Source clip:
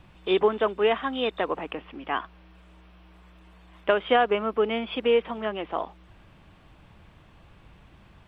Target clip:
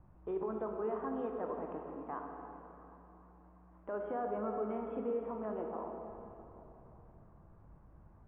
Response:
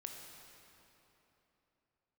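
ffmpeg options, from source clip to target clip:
-filter_complex "[0:a]lowpass=f=1200:w=0.5412,lowpass=f=1200:w=1.3066,alimiter=limit=0.0841:level=0:latency=1:release=32,equalizer=f=550:w=0.34:g=-3.5[s0];[1:a]atrim=start_sample=2205[s1];[s0][s1]afir=irnorm=-1:irlink=0,volume=0.841"

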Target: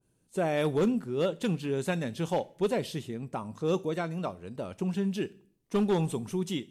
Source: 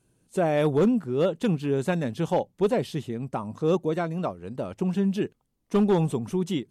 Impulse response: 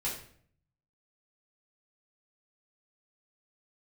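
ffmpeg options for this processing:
-filter_complex "[0:a]asplit=2[s0][s1];[s1]highshelf=f=3700:g=12[s2];[1:a]atrim=start_sample=2205[s3];[s2][s3]afir=irnorm=-1:irlink=0,volume=0.0841[s4];[s0][s4]amix=inputs=2:normalize=0,adynamicequalizer=threshold=0.0126:dfrequency=1600:dqfactor=0.7:tfrequency=1600:tqfactor=0.7:attack=5:release=100:ratio=0.375:range=2.5:mode=boostabove:tftype=highshelf,volume=0.531"

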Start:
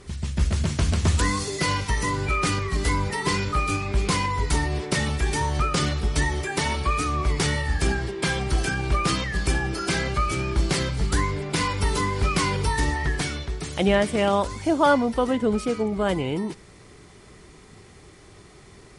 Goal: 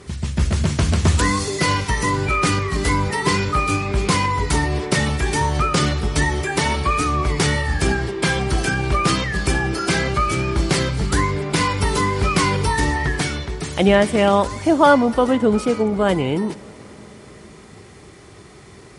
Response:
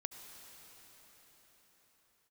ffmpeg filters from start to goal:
-filter_complex "[0:a]highpass=65,asplit=2[s0][s1];[1:a]atrim=start_sample=2205,lowpass=2900[s2];[s1][s2]afir=irnorm=-1:irlink=0,volume=0.266[s3];[s0][s3]amix=inputs=2:normalize=0,volume=1.68"

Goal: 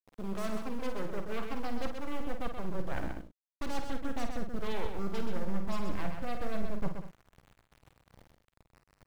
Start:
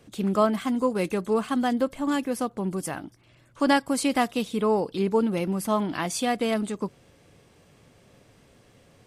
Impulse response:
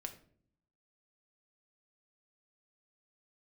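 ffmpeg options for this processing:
-filter_complex "[0:a]afftfilt=real='re*between(b*sr/4096,110,1600)':imag='im*between(b*sr/4096,110,1600)':win_size=4096:overlap=0.75,aeval=exprs='0.178*(cos(1*acos(clip(val(0)/0.178,-1,1)))-cos(1*PI/2))+0.00708*(cos(4*acos(clip(val(0)/0.178,-1,1)))-cos(4*PI/2))+0.00631*(cos(5*acos(clip(val(0)/0.178,-1,1)))-cos(5*PI/2))+0.0631*(cos(6*acos(clip(val(0)/0.178,-1,1)))-cos(6*PI/2))':c=same,areverse,acompressor=threshold=0.0224:ratio=16,areverse,aeval=exprs='val(0)*gte(abs(val(0)),0.00376)':c=same,asubboost=boost=3:cutoff=160,asplit=2[s0][s1];[s1]aecho=0:1:45|51|128|190|227:0.141|0.376|0.473|0.2|0.1[s2];[s0][s2]amix=inputs=2:normalize=0"

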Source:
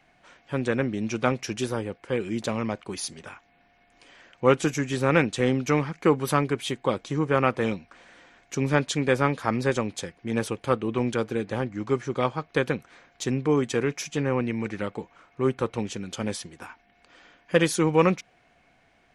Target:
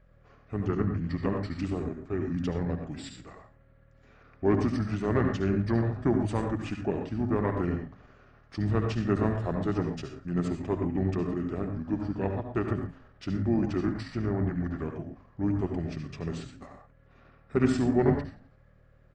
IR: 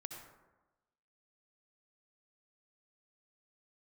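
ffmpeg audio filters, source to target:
-filter_complex "[0:a]acontrast=35,asplit=3[s0][s1][s2];[s1]asetrate=22050,aresample=44100,atempo=2,volume=0.224[s3];[s2]asetrate=29433,aresample=44100,atempo=1.49831,volume=0.224[s4];[s0][s3][s4]amix=inputs=3:normalize=0,highshelf=f=2500:g=-10,asplit=5[s5][s6][s7][s8][s9];[s6]adelay=85,afreqshift=-70,volume=0.1[s10];[s7]adelay=170,afreqshift=-140,volume=0.0519[s11];[s8]adelay=255,afreqshift=-210,volume=0.0269[s12];[s9]adelay=340,afreqshift=-280,volume=0.0141[s13];[s5][s10][s11][s12][s13]amix=inputs=5:normalize=0,aeval=exprs='val(0)+0.00355*(sin(2*PI*50*n/s)+sin(2*PI*2*50*n/s)/2+sin(2*PI*3*50*n/s)/3+sin(2*PI*4*50*n/s)/4+sin(2*PI*5*50*n/s)/5)':c=same,equalizer=f=1200:w=5.6:g=-7.5[s14];[1:a]atrim=start_sample=2205,atrim=end_sample=6174[s15];[s14][s15]afir=irnorm=-1:irlink=0,asetrate=34006,aresample=44100,atempo=1.29684,volume=0.596"

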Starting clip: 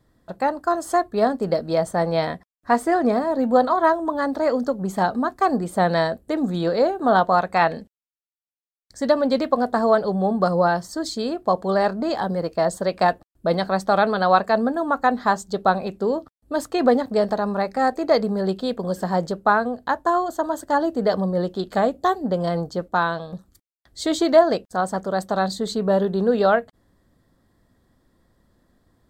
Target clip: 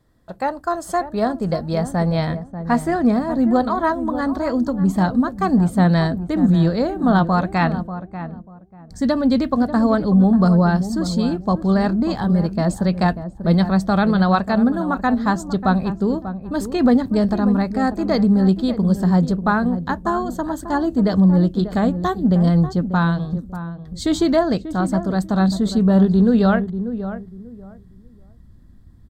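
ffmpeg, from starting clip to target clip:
-filter_complex "[0:a]asplit=2[s0][s1];[s1]adelay=590,lowpass=f=920:p=1,volume=0.316,asplit=2[s2][s3];[s3]adelay=590,lowpass=f=920:p=1,volume=0.24,asplit=2[s4][s5];[s5]adelay=590,lowpass=f=920:p=1,volume=0.24[s6];[s0][s2][s4][s6]amix=inputs=4:normalize=0,asubboost=boost=8.5:cutoff=180"

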